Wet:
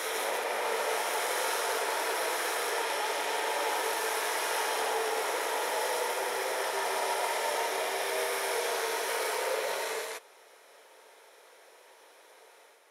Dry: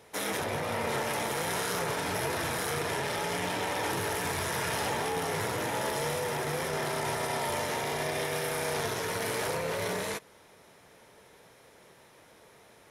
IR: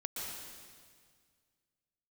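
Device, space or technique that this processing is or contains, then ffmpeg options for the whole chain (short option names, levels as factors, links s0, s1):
ghost voice: -filter_complex "[0:a]areverse[s0];[1:a]atrim=start_sample=2205[s1];[s0][s1]afir=irnorm=-1:irlink=0,areverse,highpass=f=420:w=0.5412,highpass=f=420:w=1.3066"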